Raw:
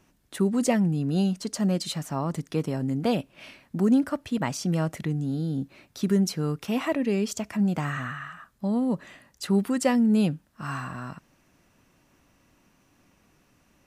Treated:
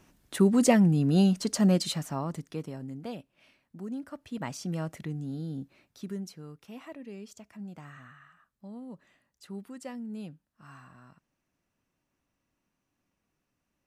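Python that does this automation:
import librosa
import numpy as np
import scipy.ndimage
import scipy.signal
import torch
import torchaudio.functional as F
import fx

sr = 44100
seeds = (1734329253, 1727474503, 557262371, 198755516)

y = fx.gain(x, sr, db=fx.line((1.74, 2.0), (2.57, -9.0), (3.35, -16.5), (3.94, -16.5), (4.46, -7.5), (5.52, -7.5), (6.49, -18.0)))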